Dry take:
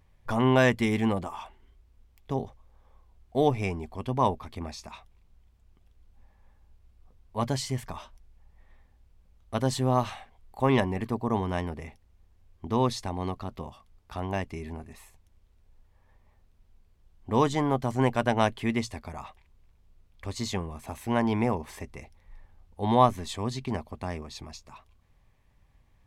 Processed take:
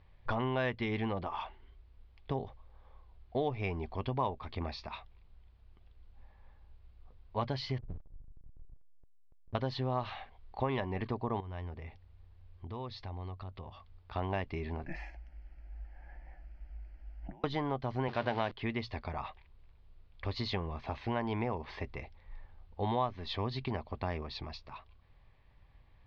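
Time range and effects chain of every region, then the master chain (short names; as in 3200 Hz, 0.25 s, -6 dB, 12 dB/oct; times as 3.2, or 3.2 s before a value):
7.78–9.55 Gaussian blur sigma 24 samples + backlash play -44.5 dBFS + fast leveller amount 50%
11.4–14.16 bell 92 Hz +9 dB 0.4 oct + compressor 2.5:1, threshold -46 dBFS
14.86–17.44 negative-ratio compressor -42 dBFS + fixed phaser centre 770 Hz, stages 8 + frequency shift -72 Hz
18.08–18.52 zero-crossing step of -29 dBFS + HPF 110 Hz
whole clip: compressor 4:1, threshold -31 dBFS; steep low-pass 4700 Hz 48 dB/oct; bell 220 Hz -5 dB 0.93 oct; gain +1.5 dB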